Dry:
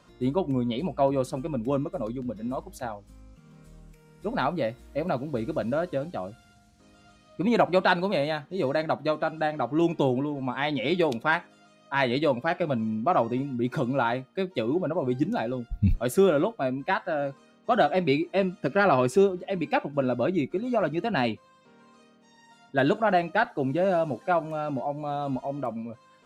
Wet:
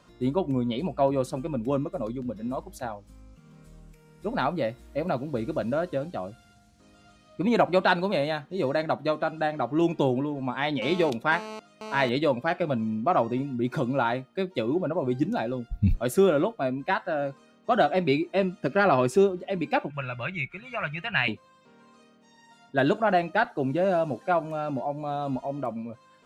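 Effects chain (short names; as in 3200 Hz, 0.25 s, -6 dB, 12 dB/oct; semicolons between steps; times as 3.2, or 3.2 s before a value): 10.82–12.09 GSM buzz -38 dBFS; 19.9–21.28 EQ curve 160 Hz 0 dB, 270 Hz -24 dB, 2400 Hz +12 dB, 4300 Hz -6 dB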